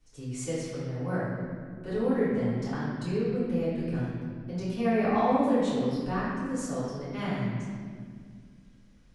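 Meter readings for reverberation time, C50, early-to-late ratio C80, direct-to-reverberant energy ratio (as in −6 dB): 2.0 s, −2.5 dB, 0.0 dB, −12.0 dB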